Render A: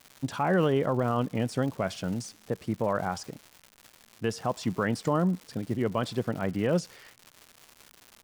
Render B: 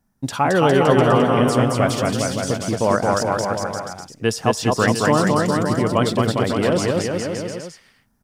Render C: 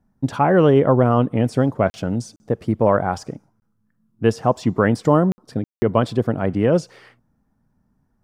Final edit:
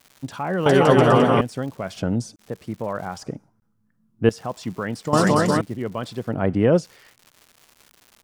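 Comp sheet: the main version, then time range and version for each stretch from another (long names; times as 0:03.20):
A
0:00.66–0:01.41: punch in from B
0:01.97–0:02.39: punch in from C
0:03.22–0:04.29: punch in from C
0:05.13–0:05.61: punch in from B
0:06.32–0:06.80: punch in from C, crossfade 0.10 s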